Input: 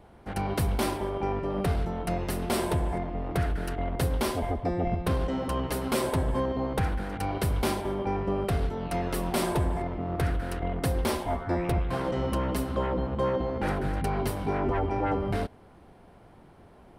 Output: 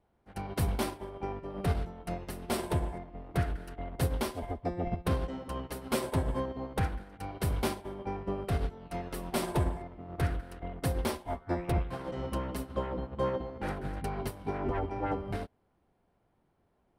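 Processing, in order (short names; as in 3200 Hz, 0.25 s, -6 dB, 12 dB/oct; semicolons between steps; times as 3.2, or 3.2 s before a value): upward expander 2.5:1, over -36 dBFS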